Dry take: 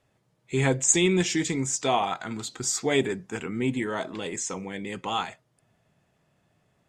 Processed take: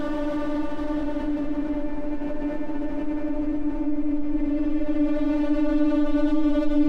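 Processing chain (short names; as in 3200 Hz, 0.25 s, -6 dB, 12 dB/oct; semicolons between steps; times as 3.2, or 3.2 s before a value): low shelf 330 Hz +9 dB; vocoder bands 8, square 148 Hz; full-wave rectifier; Paulstretch 31×, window 0.10 s, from 3.45; fast leveller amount 50%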